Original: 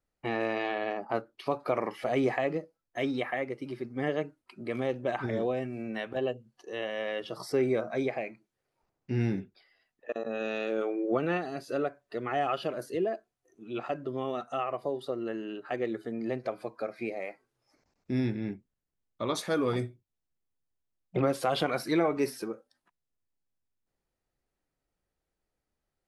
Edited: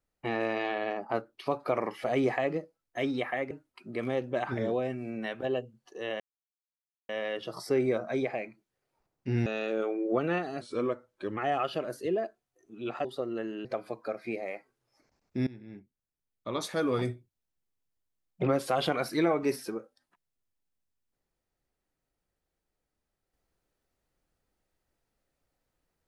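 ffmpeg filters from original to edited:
-filter_complex "[0:a]asplit=9[a][b][c][d][e][f][g][h][i];[a]atrim=end=3.512[j];[b]atrim=start=4.228:end=6.92,asetpts=PTS-STARTPTS,afade=t=out:st=2.688:d=0.004:c=hsin,apad=pad_dur=0.89[k];[c]atrim=start=6.92:end=9.292,asetpts=PTS-STARTPTS,afade=t=in:d=0.004:c=hsin[l];[d]atrim=start=10.448:end=11.604[m];[e]atrim=start=11.6:end=12.26,asetpts=PTS-STARTPTS,asetrate=38367,aresample=44100,atrim=end_sample=33455,asetpts=PTS-STARTPTS[n];[f]atrim=start=12.256:end=13.942[o];[g]atrim=start=14.948:end=15.552[p];[h]atrim=start=16.388:end=18.21,asetpts=PTS-STARTPTS,afade=t=out:st=1.818:d=0.004:c=hsin:silence=0.1[q];[i]atrim=start=18.21,asetpts=PTS-STARTPTS,afade=t=in:d=1.47:silence=0.1[r];[k][l]concat=n=2:v=0:a=1[s];[j][s]acrossfade=d=0.004:c1=hsin:c2=hsin[t];[t][m]acrossfade=d=0.004:c1=hsin:c2=hsin[u];[u][n]acrossfade=d=0.004:c1=hsin:c2=hsin[v];[v][o]acrossfade=d=0.004:c1=hsin:c2=hsin[w];[w][p]acrossfade=d=0.004:c1=hsin:c2=hsin[x];[q][r]concat=n=2:v=0:a=1[y];[x][y]acrossfade=d=0.004:c1=hsin:c2=hsin"

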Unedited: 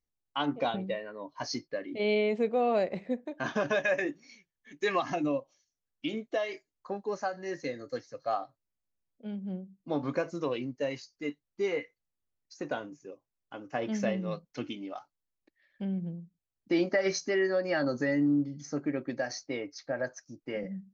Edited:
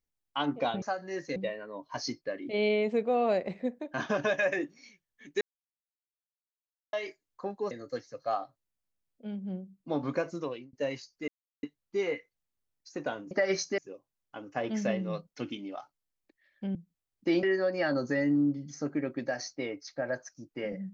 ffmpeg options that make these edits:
-filter_complex "[0:a]asplit=12[a][b][c][d][e][f][g][h][i][j][k][l];[a]atrim=end=0.822[m];[b]atrim=start=7.168:end=7.712[n];[c]atrim=start=0.818:end=4.87,asetpts=PTS-STARTPTS,afade=t=out:st=4.048:d=0.004:c=hsin[o];[d]atrim=start=4.87:end=6.39,asetpts=PTS-STARTPTS,volume=0[p];[e]atrim=start=6.39:end=7.172,asetpts=PTS-STARTPTS,afade=t=in:d=0.004:c=hsin[q];[f]atrim=start=7.708:end=10.73,asetpts=PTS-STARTPTS,afade=t=out:st=2.622:d=0.4[r];[g]atrim=start=10.73:end=11.28,asetpts=PTS-STARTPTS,afade=t=in:d=0.004:c=hsin,afade=t=out:st=0.546:d=0.004:c=hsin,apad=pad_dur=0.35[s];[h]atrim=start=11.28:end=12.962,asetpts=PTS-STARTPTS,afade=t=in:d=0.004:c=hsin[t];[i]atrim=start=16.868:end=17.342[u];[j]atrim=start=12.958:end=15.932[v];[k]atrim=start=16.188:end=16.872[w];[l]atrim=start=17.338[x];[m][n]acrossfade=d=0.004:c1=hsin:c2=hsin[y];[o][p][q]concat=n=3:v=0:a=1[z];[y][z]acrossfade=d=0.004:c1=hsin:c2=hsin[aa];[r][s][t]concat=n=3:v=0:a=1[ab];[aa][ab]acrossfade=d=0.004:c1=hsin:c2=hsin[ac];[ac][u]acrossfade=d=0.004:c1=hsin:c2=hsin[ad];[ad][v]acrossfade=d=0.004:c1=hsin:c2=hsin[ae];[ae][w]acrossfade=d=0.004:c1=hsin:c2=hsin[af];[af][x]acrossfade=d=0.004:c1=hsin:c2=hsin"

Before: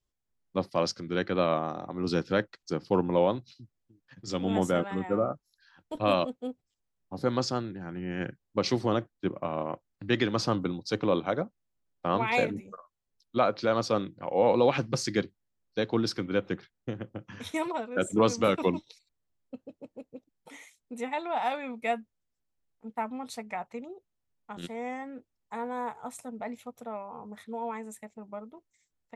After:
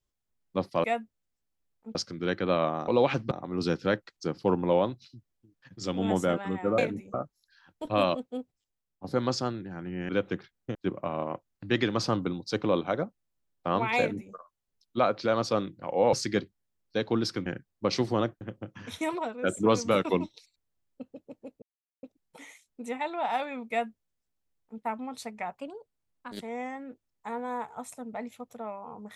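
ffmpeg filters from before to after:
-filter_complex "[0:a]asplit=16[a][b][c][d][e][f][g][h][i][j][k][l][m][n][o][p];[a]atrim=end=0.842[q];[b]atrim=start=21.818:end=22.932[r];[c]atrim=start=0.838:end=1.772[s];[d]atrim=start=14.518:end=14.952[t];[e]atrim=start=1.768:end=5.242[u];[f]atrim=start=12.378:end=12.742[v];[g]atrim=start=5.238:end=7.14,asetpts=PTS-STARTPTS,afade=t=out:st=1.262:d=0.64:silence=0.354813[w];[h]atrim=start=7.14:end=8.192,asetpts=PTS-STARTPTS,afade=t=in:d=0.004:c=hsin:silence=0.354813[x];[i]atrim=start=16.278:end=16.942[y];[j]atrim=start=9.138:end=14.522[z];[k]atrim=start=14.948:end=16.282[aa];[l]atrim=start=8.188:end=9.142[ab];[m]atrim=start=16.938:end=20.15,asetpts=PTS-STARTPTS,afade=t=out:st=3.208:d=0.004:c=hsin,apad=pad_dur=0.41[ac];[n]atrim=start=20.15:end=23.704,asetpts=PTS-STARTPTS,afade=t=in:d=0.004:c=hsin[ad];[o]atrim=start=23.7:end=24.66,asetpts=PTS-STARTPTS,asetrate=52038,aresample=44100[ae];[p]atrim=start=24.656[af];[q][r]acrossfade=d=0.004:c1=hsin:c2=hsin[ag];[ag][s]acrossfade=d=0.004:c1=hsin:c2=hsin[ah];[ah][t]acrossfade=d=0.004:c1=hsin:c2=hsin[ai];[ai][u]acrossfade=d=0.004:c1=hsin:c2=hsin[aj];[aj][v]acrossfade=d=0.004:c1=hsin:c2=hsin[ak];[w][x]concat=n=2:v=0:a=1[al];[ak][al]acrossfade=d=0.004:c1=hsin:c2=hsin[am];[am][y]acrossfade=d=0.004:c1=hsin:c2=hsin[an];[an][z]acrossfade=d=0.004:c1=hsin:c2=hsin[ao];[ao][aa]acrossfade=d=0.004:c1=hsin:c2=hsin[ap];[ap][ab]acrossfade=d=0.004:c1=hsin:c2=hsin[aq];[ac][ad]concat=n=2:v=0:a=1[ar];[aq][ar]acrossfade=d=0.004:c1=hsin:c2=hsin[as];[as][ae]acrossfade=d=0.004:c1=hsin:c2=hsin[at];[at][af]acrossfade=d=0.004:c1=hsin:c2=hsin"

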